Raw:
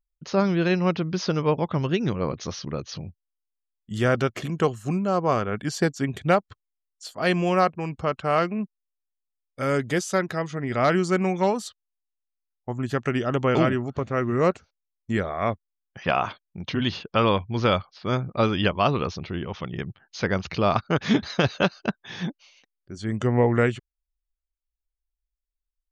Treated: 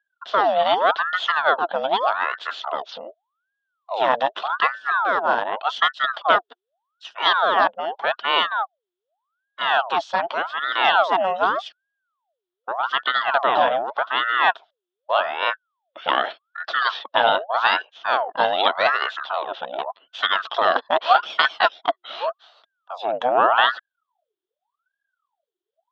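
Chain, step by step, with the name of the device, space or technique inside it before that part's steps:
voice changer toy (ring modulator whose carrier an LFO sweeps 1,000 Hz, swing 65%, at 0.84 Hz; loudspeaker in its box 580–3,900 Hz, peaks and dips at 670 Hz +9 dB, 1,400 Hz +3 dB, 2,200 Hz −10 dB, 3,400 Hz +10 dB)
level +5.5 dB

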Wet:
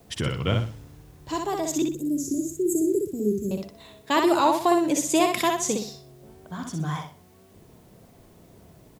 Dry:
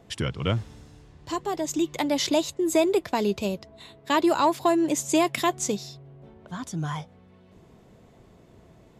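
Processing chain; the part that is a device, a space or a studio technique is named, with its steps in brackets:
0:01.82–0:03.51: Chebyshev band-stop filter 410–6,800 Hz, order 4
high-shelf EQ 10,000 Hz +3.5 dB
repeating echo 62 ms, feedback 33%, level −4 dB
plain cassette with noise reduction switched in (one half of a high-frequency compander decoder only; tape wow and flutter; white noise bed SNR 37 dB)

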